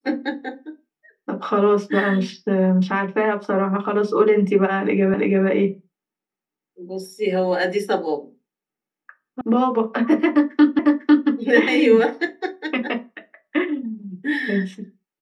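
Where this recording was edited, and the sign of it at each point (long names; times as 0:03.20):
0:05.14: the same again, the last 0.33 s
0:09.41: cut off before it has died away
0:10.79: the same again, the last 0.5 s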